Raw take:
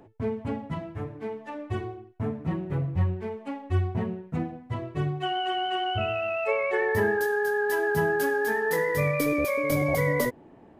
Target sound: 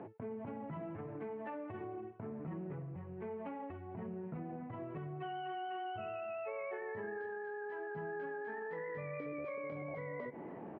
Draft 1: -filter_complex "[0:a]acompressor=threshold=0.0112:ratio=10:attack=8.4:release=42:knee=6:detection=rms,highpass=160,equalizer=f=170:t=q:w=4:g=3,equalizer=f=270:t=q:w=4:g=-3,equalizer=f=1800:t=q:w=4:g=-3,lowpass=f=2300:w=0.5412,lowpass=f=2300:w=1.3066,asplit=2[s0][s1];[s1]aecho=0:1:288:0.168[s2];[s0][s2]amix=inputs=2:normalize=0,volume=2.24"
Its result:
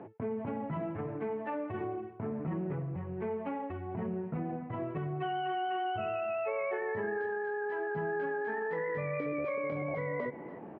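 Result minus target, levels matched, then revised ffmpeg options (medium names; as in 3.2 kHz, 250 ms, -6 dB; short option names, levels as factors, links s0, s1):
compression: peak gain reduction -8 dB
-filter_complex "[0:a]acompressor=threshold=0.00398:ratio=10:attack=8.4:release=42:knee=6:detection=rms,highpass=160,equalizer=f=170:t=q:w=4:g=3,equalizer=f=270:t=q:w=4:g=-3,equalizer=f=1800:t=q:w=4:g=-3,lowpass=f=2300:w=0.5412,lowpass=f=2300:w=1.3066,asplit=2[s0][s1];[s1]aecho=0:1:288:0.168[s2];[s0][s2]amix=inputs=2:normalize=0,volume=2.24"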